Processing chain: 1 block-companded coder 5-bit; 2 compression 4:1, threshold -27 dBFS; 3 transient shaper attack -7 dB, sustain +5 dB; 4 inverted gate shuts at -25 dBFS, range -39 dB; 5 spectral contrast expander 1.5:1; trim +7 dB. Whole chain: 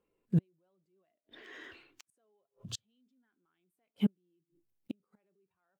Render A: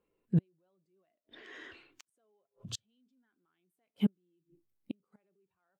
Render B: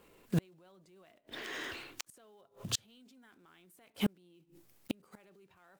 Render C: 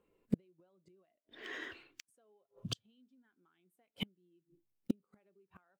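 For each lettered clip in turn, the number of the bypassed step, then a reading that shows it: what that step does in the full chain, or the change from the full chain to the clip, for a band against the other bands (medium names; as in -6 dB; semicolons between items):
1, distortion -22 dB; 5, 125 Hz band -11.5 dB; 3, 125 Hz band -11.0 dB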